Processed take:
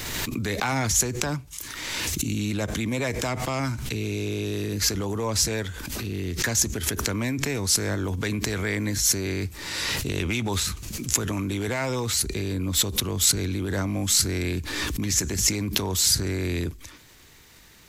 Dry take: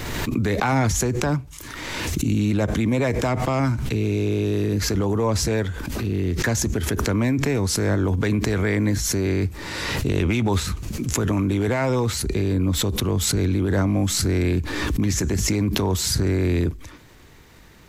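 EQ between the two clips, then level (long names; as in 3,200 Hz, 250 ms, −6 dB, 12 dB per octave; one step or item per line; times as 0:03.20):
high-shelf EQ 2,100 Hz +12 dB
−7.0 dB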